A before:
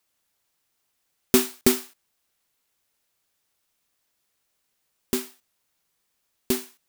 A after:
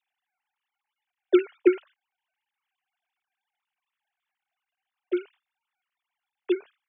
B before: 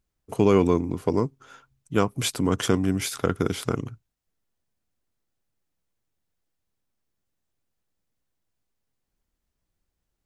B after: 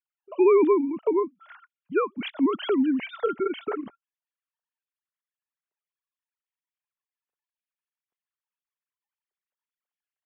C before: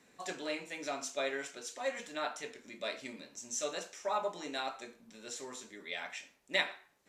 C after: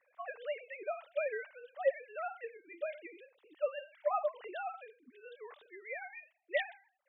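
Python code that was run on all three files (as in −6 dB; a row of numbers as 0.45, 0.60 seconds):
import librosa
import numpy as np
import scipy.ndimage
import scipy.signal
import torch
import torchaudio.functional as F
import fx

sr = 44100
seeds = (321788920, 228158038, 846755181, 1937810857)

y = fx.sine_speech(x, sr)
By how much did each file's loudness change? −1.5, 0.0, −0.5 LU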